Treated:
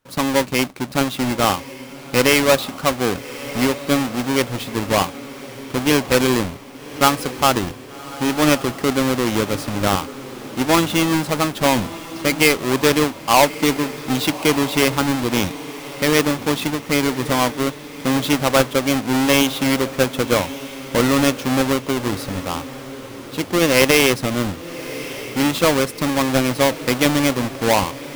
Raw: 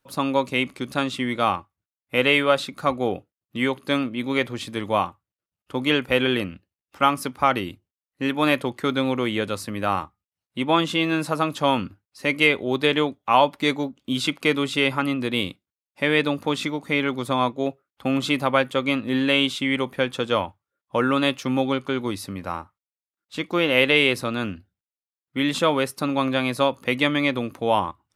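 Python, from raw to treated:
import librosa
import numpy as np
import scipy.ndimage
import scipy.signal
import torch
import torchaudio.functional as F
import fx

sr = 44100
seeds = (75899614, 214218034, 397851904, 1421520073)

p1 = fx.halfwave_hold(x, sr)
y = p1 + fx.echo_diffused(p1, sr, ms=1183, feedback_pct=50, wet_db=-14.5, dry=0)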